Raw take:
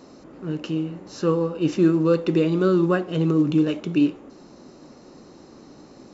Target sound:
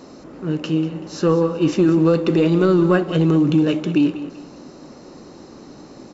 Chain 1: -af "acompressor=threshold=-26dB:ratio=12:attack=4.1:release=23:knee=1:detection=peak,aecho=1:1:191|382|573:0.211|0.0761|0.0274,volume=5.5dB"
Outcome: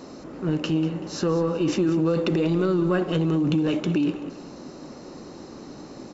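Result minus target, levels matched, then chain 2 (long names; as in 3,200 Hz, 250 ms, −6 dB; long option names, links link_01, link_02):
downward compressor: peak gain reduction +7.5 dB
-af "acompressor=threshold=-18dB:ratio=12:attack=4.1:release=23:knee=1:detection=peak,aecho=1:1:191|382|573:0.211|0.0761|0.0274,volume=5.5dB"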